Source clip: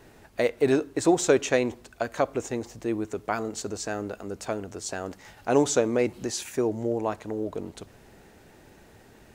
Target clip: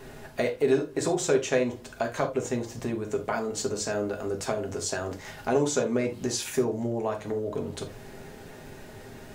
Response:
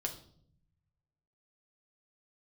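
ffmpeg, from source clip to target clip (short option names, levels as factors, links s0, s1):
-filter_complex "[0:a]acompressor=threshold=0.0126:ratio=2[s0];[1:a]atrim=start_sample=2205,atrim=end_sample=3969[s1];[s0][s1]afir=irnorm=-1:irlink=0,volume=2.24"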